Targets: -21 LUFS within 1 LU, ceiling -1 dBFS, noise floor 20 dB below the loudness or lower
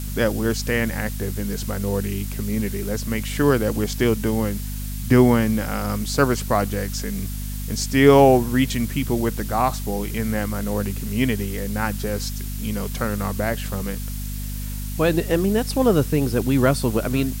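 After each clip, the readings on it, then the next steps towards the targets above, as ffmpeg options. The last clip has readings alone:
hum 50 Hz; harmonics up to 250 Hz; hum level -26 dBFS; noise floor -29 dBFS; noise floor target -42 dBFS; loudness -22.0 LUFS; peak -1.5 dBFS; loudness target -21.0 LUFS
-> -af "bandreject=f=50:t=h:w=4,bandreject=f=100:t=h:w=4,bandreject=f=150:t=h:w=4,bandreject=f=200:t=h:w=4,bandreject=f=250:t=h:w=4"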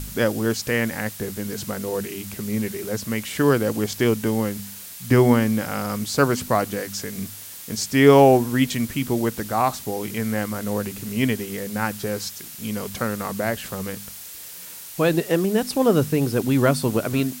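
hum none; noise floor -39 dBFS; noise floor target -43 dBFS
-> -af "afftdn=nr=6:nf=-39"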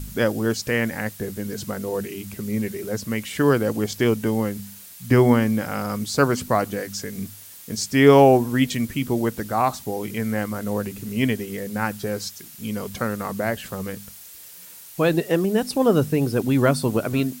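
noise floor -43 dBFS; loudness -22.5 LUFS; peak -1.5 dBFS; loudness target -21.0 LUFS
-> -af "volume=1.5dB,alimiter=limit=-1dB:level=0:latency=1"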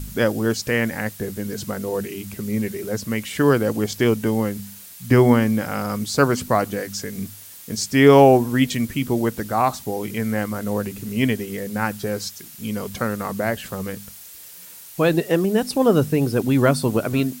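loudness -21.0 LUFS; peak -1.0 dBFS; noise floor -41 dBFS

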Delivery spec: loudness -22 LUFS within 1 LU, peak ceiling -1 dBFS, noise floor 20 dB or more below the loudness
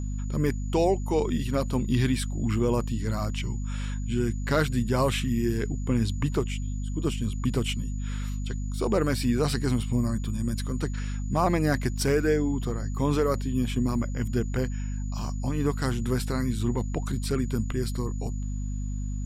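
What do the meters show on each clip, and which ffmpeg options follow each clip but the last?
hum 50 Hz; harmonics up to 250 Hz; hum level -28 dBFS; steady tone 6900 Hz; tone level -50 dBFS; loudness -28.0 LUFS; peak -11.0 dBFS; loudness target -22.0 LUFS
-> -af "bandreject=f=50:t=h:w=4,bandreject=f=100:t=h:w=4,bandreject=f=150:t=h:w=4,bandreject=f=200:t=h:w=4,bandreject=f=250:t=h:w=4"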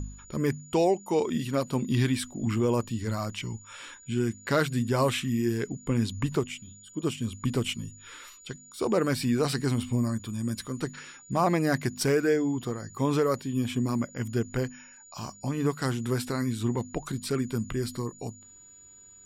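hum none; steady tone 6900 Hz; tone level -50 dBFS
-> -af "bandreject=f=6.9k:w=30"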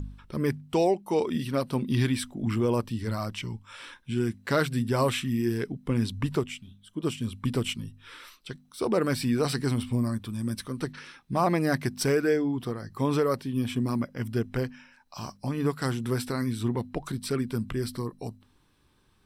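steady tone none; loudness -29.0 LUFS; peak -12.0 dBFS; loudness target -22.0 LUFS
-> -af "volume=7dB"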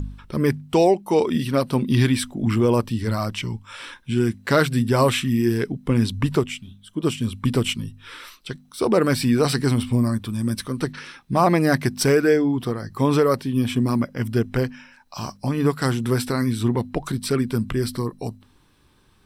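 loudness -22.0 LUFS; peak -5.0 dBFS; noise floor -57 dBFS

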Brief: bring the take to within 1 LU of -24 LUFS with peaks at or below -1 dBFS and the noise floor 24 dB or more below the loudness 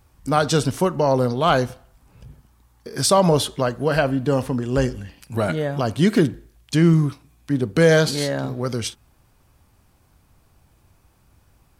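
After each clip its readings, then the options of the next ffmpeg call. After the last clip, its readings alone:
loudness -20.5 LUFS; peak -4.5 dBFS; loudness target -24.0 LUFS
-> -af "volume=-3.5dB"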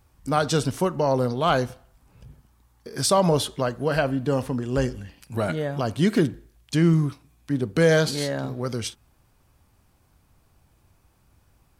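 loudness -24.0 LUFS; peak -8.0 dBFS; noise floor -63 dBFS

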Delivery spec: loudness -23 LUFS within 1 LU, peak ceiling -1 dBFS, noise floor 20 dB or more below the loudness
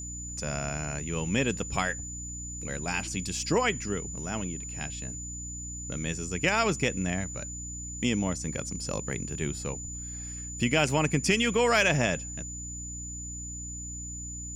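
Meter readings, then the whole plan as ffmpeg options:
hum 60 Hz; harmonics up to 300 Hz; hum level -39 dBFS; steady tone 7000 Hz; tone level -38 dBFS; loudness -30.0 LUFS; peak -10.0 dBFS; loudness target -23.0 LUFS
-> -af "bandreject=f=60:t=h:w=4,bandreject=f=120:t=h:w=4,bandreject=f=180:t=h:w=4,bandreject=f=240:t=h:w=4,bandreject=f=300:t=h:w=4"
-af "bandreject=f=7k:w=30"
-af "volume=7dB"

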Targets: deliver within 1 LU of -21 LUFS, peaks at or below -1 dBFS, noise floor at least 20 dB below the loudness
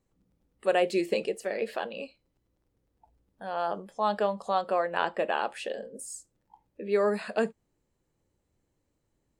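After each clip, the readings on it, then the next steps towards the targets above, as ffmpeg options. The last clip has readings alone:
loudness -30.0 LUFS; peak -11.5 dBFS; loudness target -21.0 LUFS
-> -af "volume=9dB"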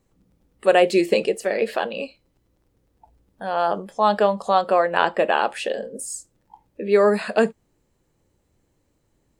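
loudness -21.0 LUFS; peak -2.5 dBFS; noise floor -69 dBFS

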